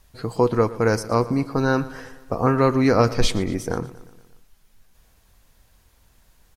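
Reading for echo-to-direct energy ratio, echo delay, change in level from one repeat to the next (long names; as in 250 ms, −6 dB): −16.0 dB, 118 ms, −4.5 dB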